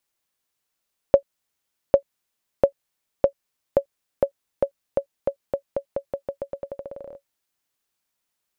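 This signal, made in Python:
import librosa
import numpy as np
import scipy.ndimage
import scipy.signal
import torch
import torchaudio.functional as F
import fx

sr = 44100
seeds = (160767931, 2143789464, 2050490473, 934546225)

y = fx.bouncing_ball(sr, first_gap_s=0.8, ratio=0.87, hz=557.0, decay_ms=88.0, level_db=-2.0)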